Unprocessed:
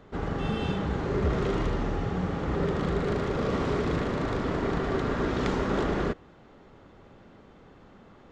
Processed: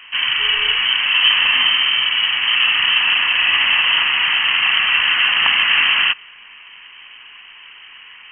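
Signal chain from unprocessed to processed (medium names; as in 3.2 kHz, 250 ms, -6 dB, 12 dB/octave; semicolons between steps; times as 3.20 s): frequency inversion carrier 3.1 kHz; graphic EQ 250/500/1000/2000 Hz +4/-5/+11/+7 dB; trim +6.5 dB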